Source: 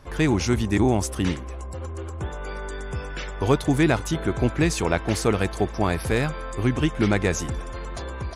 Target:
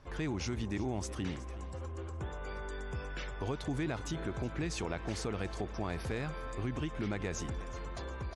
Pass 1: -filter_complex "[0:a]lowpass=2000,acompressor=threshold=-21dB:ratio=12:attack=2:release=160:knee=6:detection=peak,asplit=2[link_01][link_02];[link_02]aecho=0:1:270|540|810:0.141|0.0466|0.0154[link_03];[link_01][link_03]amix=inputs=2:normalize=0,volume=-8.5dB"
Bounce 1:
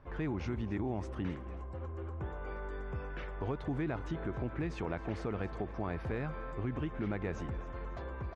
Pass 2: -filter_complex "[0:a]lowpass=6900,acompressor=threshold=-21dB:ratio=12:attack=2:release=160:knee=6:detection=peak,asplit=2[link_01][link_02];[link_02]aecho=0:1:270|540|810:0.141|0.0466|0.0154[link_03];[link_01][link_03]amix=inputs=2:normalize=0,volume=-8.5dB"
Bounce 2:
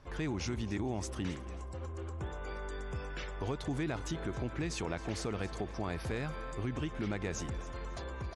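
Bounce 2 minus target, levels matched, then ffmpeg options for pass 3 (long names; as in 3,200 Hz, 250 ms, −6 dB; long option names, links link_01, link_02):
echo 98 ms early
-filter_complex "[0:a]lowpass=6900,acompressor=threshold=-21dB:ratio=12:attack=2:release=160:knee=6:detection=peak,asplit=2[link_01][link_02];[link_02]aecho=0:1:368|736|1104:0.141|0.0466|0.0154[link_03];[link_01][link_03]amix=inputs=2:normalize=0,volume=-8.5dB"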